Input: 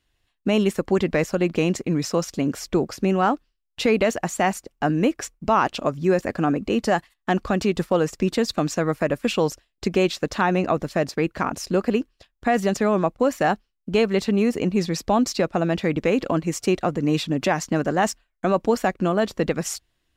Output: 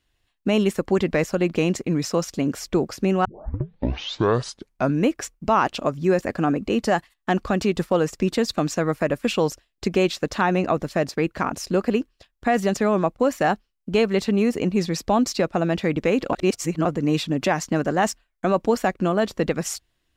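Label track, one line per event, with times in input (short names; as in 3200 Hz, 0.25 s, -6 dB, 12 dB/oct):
3.250000	3.250000	tape start 1.78 s
16.330000	16.850000	reverse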